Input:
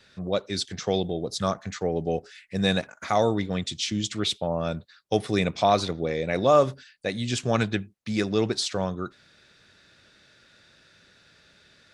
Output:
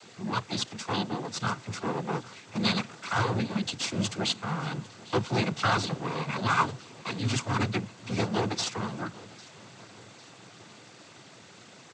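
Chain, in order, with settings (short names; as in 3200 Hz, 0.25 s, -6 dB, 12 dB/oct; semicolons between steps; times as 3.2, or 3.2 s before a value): minimum comb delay 0.85 ms; added noise pink -49 dBFS; noise vocoder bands 16; on a send: feedback echo 0.801 s, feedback 51%, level -21.5 dB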